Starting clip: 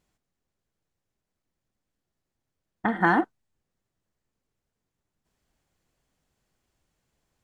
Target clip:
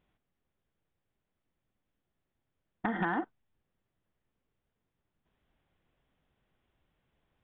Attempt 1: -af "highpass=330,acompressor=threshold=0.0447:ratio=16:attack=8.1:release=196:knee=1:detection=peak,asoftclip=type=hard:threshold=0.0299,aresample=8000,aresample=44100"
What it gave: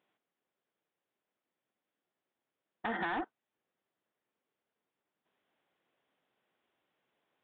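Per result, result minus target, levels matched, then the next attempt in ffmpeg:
hard clipper: distortion +12 dB; 250 Hz band -3.0 dB
-af "highpass=330,acompressor=threshold=0.0447:ratio=16:attack=8.1:release=196:knee=1:detection=peak,asoftclip=type=hard:threshold=0.075,aresample=8000,aresample=44100"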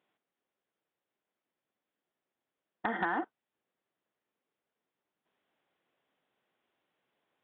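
250 Hz band -4.0 dB
-af "acompressor=threshold=0.0447:ratio=16:attack=8.1:release=196:knee=1:detection=peak,asoftclip=type=hard:threshold=0.075,aresample=8000,aresample=44100"

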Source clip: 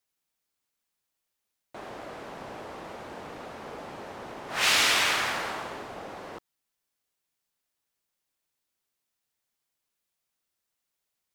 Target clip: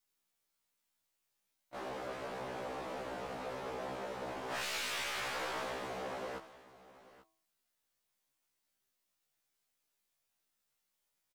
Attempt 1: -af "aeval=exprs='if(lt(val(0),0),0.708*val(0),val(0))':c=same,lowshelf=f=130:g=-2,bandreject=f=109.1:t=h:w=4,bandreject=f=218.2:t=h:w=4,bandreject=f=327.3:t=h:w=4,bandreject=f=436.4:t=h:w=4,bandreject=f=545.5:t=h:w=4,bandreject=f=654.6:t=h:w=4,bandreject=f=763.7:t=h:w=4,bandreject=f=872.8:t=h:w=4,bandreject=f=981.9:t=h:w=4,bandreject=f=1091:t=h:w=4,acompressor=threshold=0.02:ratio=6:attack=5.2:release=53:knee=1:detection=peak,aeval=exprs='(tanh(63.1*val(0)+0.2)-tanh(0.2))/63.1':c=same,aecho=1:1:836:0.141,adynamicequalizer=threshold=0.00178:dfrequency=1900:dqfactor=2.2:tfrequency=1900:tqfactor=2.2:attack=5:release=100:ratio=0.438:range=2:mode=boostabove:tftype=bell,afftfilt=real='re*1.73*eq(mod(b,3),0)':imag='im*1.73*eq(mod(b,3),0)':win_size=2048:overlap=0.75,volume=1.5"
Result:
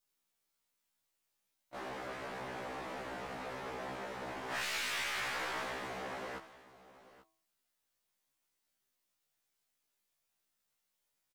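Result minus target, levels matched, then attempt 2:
500 Hz band -3.0 dB
-af "aeval=exprs='if(lt(val(0),0),0.708*val(0),val(0))':c=same,lowshelf=f=130:g=-2,bandreject=f=109.1:t=h:w=4,bandreject=f=218.2:t=h:w=4,bandreject=f=327.3:t=h:w=4,bandreject=f=436.4:t=h:w=4,bandreject=f=545.5:t=h:w=4,bandreject=f=654.6:t=h:w=4,bandreject=f=763.7:t=h:w=4,bandreject=f=872.8:t=h:w=4,bandreject=f=981.9:t=h:w=4,bandreject=f=1091:t=h:w=4,acompressor=threshold=0.02:ratio=6:attack=5.2:release=53:knee=1:detection=peak,aeval=exprs='(tanh(63.1*val(0)+0.2)-tanh(0.2))/63.1':c=same,aecho=1:1:836:0.141,adynamicequalizer=threshold=0.00178:dfrequency=520:dqfactor=2.2:tfrequency=520:tqfactor=2.2:attack=5:release=100:ratio=0.438:range=2:mode=boostabove:tftype=bell,afftfilt=real='re*1.73*eq(mod(b,3),0)':imag='im*1.73*eq(mod(b,3),0)':win_size=2048:overlap=0.75,volume=1.5"

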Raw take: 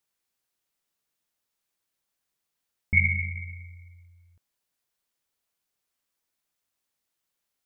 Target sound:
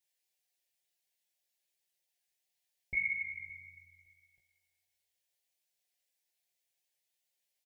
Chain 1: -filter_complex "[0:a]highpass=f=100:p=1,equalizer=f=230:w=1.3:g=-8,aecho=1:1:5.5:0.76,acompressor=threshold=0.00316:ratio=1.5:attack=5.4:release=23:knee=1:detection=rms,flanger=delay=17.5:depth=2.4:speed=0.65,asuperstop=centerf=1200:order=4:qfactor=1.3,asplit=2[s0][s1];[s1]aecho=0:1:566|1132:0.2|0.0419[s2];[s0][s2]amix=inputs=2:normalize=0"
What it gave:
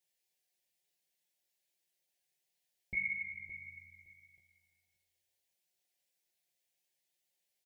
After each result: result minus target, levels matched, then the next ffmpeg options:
250 Hz band +8.0 dB; echo-to-direct +9 dB; compression: peak gain reduction +2.5 dB
-filter_complex "[0:a]highpass=f=100:p=1,equalizer=f=230:w=1.3:g=-19,aecho=1:1:5.5:0.76,acompressor=threshold=0.00316:ratio=1.5:attack=5.4:release=23:knee=1:detection=rms,flanger=delay=17.5:depth=2.4:speed=0.65,asuperstop=centerf=1200:order=4:qfactor=1.3,asplit=2[s0][s1];[s1]aecho=0:1:566|1132:0.2|0.0419[s2];[s0][s2]amix=inputs=2:normalize=0"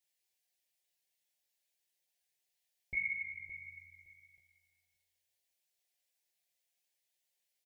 echo-to-direct +9 dB; compression: peak gain reduction +2.5 dB
-filter_complex "[0:a]highpass=f=100:p=1,equalizer=f=230:w=1.3:g=-19,aecho=1:1:5.5:0.76,acompressor=threshold=0.00316:ratio=1.5:attack=5.4:release=23:knee=1:detection=rms,flanger=delay=17.5:depth=2.4:speed=0.65,asuperstop=centerf=1200:order=4:qfactor=1.3,asplit=2[s0][s1];[s1]aecho=0:1:566|1132:0.0708|0.0149[s2];[s0][s2]amix=inputs=2:normalize=0"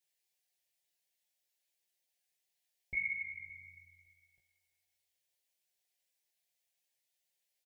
compression: peak gain reduction +2.5 dB
-filter_complex "[0:a]highpass=f=100:p=1,equalizer=f=230:w=1.3:g=-19,aecho=1:1:5.5:0.76,acompressor=threshold=0.00794:ratio=1.5:attack=5.4:release=23:knee=1:detection=rms,flanger=delay=17.5:depth=2.4:speed=0.65,asuperstop=centerf=1200:order=4:qfactor=1.3,asplit=2[s0][s1];[s1]aecho=0:1:566|1132:0.0708|0.0149[s2];[s0][s2]amix=inputs=2:normalize=0"

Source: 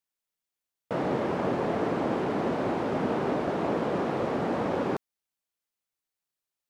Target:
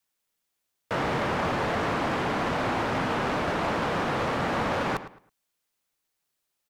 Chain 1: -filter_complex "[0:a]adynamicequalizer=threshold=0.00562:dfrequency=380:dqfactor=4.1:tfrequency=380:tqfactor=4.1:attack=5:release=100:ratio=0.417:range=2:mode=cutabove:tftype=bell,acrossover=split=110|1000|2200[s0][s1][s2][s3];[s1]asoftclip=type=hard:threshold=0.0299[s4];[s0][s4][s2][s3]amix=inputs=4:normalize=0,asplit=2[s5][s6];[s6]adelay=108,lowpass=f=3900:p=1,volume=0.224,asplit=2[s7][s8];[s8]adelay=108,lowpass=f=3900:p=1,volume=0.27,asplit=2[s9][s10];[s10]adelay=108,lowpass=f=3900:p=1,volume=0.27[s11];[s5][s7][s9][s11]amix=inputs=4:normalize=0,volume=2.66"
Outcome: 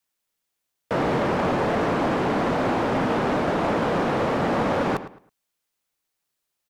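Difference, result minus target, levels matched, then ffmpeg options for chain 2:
hard clipper: distortion -4 dB
-filter_complex "[0:a]adynamicequalizer=threshold=0.00562:dfrequency=380:dqfactor=4.1:tfrequency=380:tqfactor=4.1:attack=5:release=100:ratio=0.417:range=2:mode=cutabove:tftype=bell,acrossover=split=110|1000|2200[s0][s1][s2][s3];[s1]asoftclip=type=hard:threshold=0.0112[s4];[s0][s4][s2][s3]amix=inputs=4:normalize=0,asplit=2[s5][s6];[s6]adelay=108,lowpass=f=3900:p=1,volume=0.224,asplit=2[s7][s8];[s8]adelay=108,lowpass=f=3900:p=1,volume=0.27,asplit=2[s9][s10];[s10]adelay=108,lowpass=f=3900:p=1,volume=0.27[s11];[s5][s7][s9][s11]amix=inputs=4:normalize=0,volume=2.66"

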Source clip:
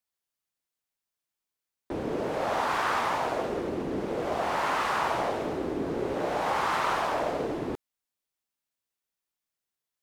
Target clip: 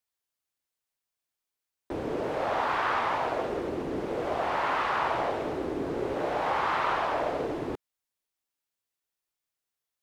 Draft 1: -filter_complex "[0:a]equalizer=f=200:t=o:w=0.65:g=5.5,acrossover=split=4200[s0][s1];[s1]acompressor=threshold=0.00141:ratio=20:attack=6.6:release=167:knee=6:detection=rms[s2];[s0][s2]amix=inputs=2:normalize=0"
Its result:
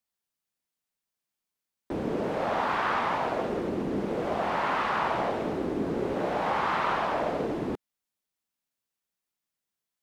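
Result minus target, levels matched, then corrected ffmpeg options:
250 Hz band +3.0 dB
-filter_complex "[0:a]equalizer=f=200:t=o:w=0.65:g=-4.5,acrossover=split=4200[s0][s1];[s1]acompressor=threshold=0.00141:ratio=20:attack=6.6:release=167:knee=6:detection=rms[s2];[s0][s2]amix=inputs=2:normalize=0"

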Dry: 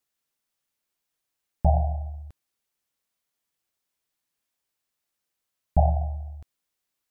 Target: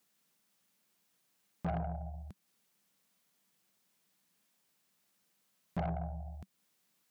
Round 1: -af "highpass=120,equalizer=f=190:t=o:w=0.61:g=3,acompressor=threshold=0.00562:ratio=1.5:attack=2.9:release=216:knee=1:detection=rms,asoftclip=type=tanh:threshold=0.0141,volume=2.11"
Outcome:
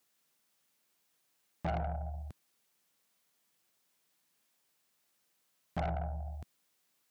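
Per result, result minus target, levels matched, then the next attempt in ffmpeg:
compression: peak gain reduction -4.5 dB; 250 Hz band -4.0 dB
-af "highpass=120,equalizer=f=190:t=o:w=0.61:g=3,acompressor=threshold=0.0015:ratio=1.5:attack=2.9:release=216:knee=1:detection=rms,asoftclip=type=tanh:threshold=0.0141,volume=2.11"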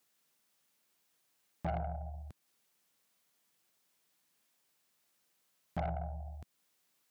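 250 Hz band -4.0 dB
-af "highpass=120,equalizer=f=190:t=o:w=0.61:g=12,acompressor=threshold=0.0015:ratio=1.5:attack=2.9:release=216:knee=1:detection=rms,asoftclip=type=tanh:threshold=0.0141,volume=2.11"

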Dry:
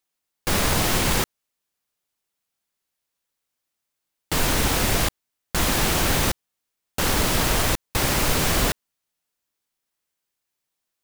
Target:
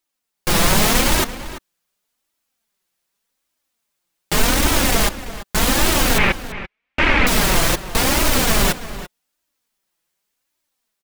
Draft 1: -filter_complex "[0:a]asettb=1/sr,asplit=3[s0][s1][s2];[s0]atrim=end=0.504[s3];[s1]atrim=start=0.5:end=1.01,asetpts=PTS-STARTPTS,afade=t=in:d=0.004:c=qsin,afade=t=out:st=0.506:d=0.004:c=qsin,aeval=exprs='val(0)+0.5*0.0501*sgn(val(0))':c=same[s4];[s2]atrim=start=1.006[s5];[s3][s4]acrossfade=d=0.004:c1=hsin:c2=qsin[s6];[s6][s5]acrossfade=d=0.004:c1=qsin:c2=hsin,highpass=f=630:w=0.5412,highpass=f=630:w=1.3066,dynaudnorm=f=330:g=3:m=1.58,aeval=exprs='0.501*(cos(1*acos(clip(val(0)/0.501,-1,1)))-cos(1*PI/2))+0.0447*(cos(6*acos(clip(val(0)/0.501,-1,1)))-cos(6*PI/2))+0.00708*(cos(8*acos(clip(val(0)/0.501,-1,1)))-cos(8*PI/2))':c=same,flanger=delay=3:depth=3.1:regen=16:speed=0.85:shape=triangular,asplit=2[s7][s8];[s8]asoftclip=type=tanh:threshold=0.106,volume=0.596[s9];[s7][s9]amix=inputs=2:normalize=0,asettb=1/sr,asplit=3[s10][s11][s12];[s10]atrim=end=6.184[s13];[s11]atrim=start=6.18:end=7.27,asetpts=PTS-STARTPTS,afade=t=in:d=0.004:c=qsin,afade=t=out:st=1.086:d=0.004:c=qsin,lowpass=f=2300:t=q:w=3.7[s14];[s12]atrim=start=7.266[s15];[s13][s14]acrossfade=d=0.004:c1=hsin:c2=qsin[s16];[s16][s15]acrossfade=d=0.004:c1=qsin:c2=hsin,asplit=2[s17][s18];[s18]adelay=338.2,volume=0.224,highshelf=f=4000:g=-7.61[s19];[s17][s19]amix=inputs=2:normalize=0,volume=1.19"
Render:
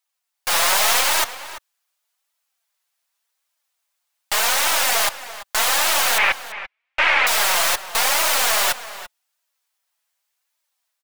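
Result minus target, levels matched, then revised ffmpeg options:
500 Hz band -5.0 dB
-filter_complex "[0:a]asettb=1/sr,asplit=3[s0][s1][s2];[s0]atrim=end=0.504[s3];[s1]atrim=start=0.5:end=1.01,asetpts=PTS-STARTPTS,afade=t=in:d=0.004:c=qsin,afade=t=out:st=0.506:d=0.004:c=qsin,aeval=exprs='val(0)+0.5*0.0501*sgn(val(0))':c=same[s4];[s2]atrim=start=1.006[s5];[s3][s4]acrossfade=d=0.004:c1=hsin:c2=qsin[s6];[s6][s5]acrossfade=d=0.004:c1=qsin:c2=hsin,dynaudnorm=f=330:g=3:m=1.58,aeval=exprs='0.501*(cos(1*acos(clip(val(0)/0.501,-1,1)))-cos(1*PI/2))+0.0447*(cos(6*acos(clip(val(0)/0.501,-1,1)))-cos(6*PI/2))+0.00708*(cos(8*acos(clip(val(0)/0.501,-1,1)))-cos(8*PI/2))':c=same,flanger=delay=3:depth=3.1:regen=16:speed=0.85:shape=triangular,asplit=2[s7][s8];[s8]asoftclip=type=tanh:threshold=0.106,volume=0.596[s9];[s7][s9]amix=inputs=2:normalize=0,asettb=1/sr,asplit=3[s10][s11][s12];[s10]atrim=end=6.184[s13];[s11]atrim=start=6.18:end=7.27,asetpts=PTS-STARTPTS,afade=t=in:d=0.004:c=qsin,afade=t=out:st=1.086:d=0.004:c=qsin,lowpass=f=2300:t=q:w=3.7[s14];[s12]atrim=start=7.266[s15];[s13][s14]acrossfade=d=0.004:c1=hsin:c2=qsin[s16];[s16][s15]acrossfade=d=0.004:c1=qsin:c2=hsin,asplit=2[s17][s18];[s18]adelay=338.2,volume=0.224,highshelf=f=4000:g=-7.61[s19];[s17][s19]amix=inputs=2:normalize=0,volume=1.19"

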